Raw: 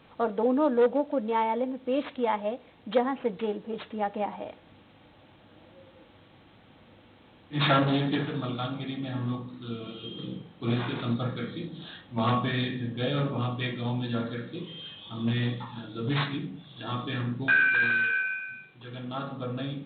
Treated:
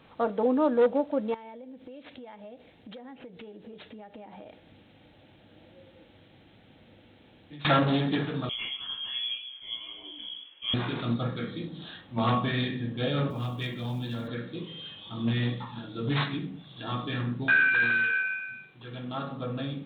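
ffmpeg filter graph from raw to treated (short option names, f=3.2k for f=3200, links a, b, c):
-filter_complex "[0:a]asettb=1/sr,asplit=3[a][b][c];[a]atrim=end=1.344[d];[b]atrim=start=1.34:end=7.65,asetpts=PTS-STARTPTS,afade=t=in:d=0.004:c=qsin,afade=t=out:st=6.306:d=0.004:c=qsin,equalizer=f=1.1k:t=o:w=0.6:g=-9.5,acompressor=threshold=-41dB:ratio=16:attack=3.2:release=140:knee=1:detection=peak[e];[c]atrim=start=7.646[f];[d][e]acrossfade=d=0.004:c1=hsin:c2=qsin[g];[g][f]acrossfade=d=0.004:c1=qsin:c2=hsin,asettb=1/sr,asplit=3[h][i][j];[h]atrim=end=8.494[k];[i]atrim=start=8.49:end=10.74,asetpts=PTS-STARTPTS,afade=t=in:d=0.004:c=qsin,afade=t=out:st=2.246:d=0.004:c=qsin,flanger=delay=16:depth=7.8:speed=1.5,lowpass=f=3k:t=q:w=0.5098,lowpass=f=3k:t=q:w=0.6013,lowpass=f=3k:t=q:w=0.9,lowpass=f=3k:t=q:w=2.563,afreqshift=-3500[l];[j]atrim=start=10.736[m];[k][l]acrossfade=d=0.004:c1=hsin:c2=qsin[n];[n][m]acrossfade=d=0.004:c1=qsin:c2=hsin,asettb=1/sr,asplit=3[o][p][q];[o]atrim=end=13.304[r];[p]atrim=start=13.3:end=14.28,asetpts=PTS-STARTPTS,afade=t=in:d=0.004:c=qsin,afade=t=out:st=0.976:d=0.004:c=qsin,acrossover=split=140|3000[s][t][u];[t]acompressor=threshold=-35dB:ratio=3:attack=3.2:release=140:knee=2.83:detection=peak[v];[s][v][u]amix=inputs=3:normalize=0,acrusher=bits=8:mode=log:mix=0:aa=0.000001,aeval=exprs='clip(val(0),-1,0.0447)':c=same[w];[q]atrim=start=14.276[x];[r][w]acrossfade=d=0.004:c1=hsin:c2=qsin[y];[y][x]acrossfade=d=0.004:c1=qsin:c2=hsin"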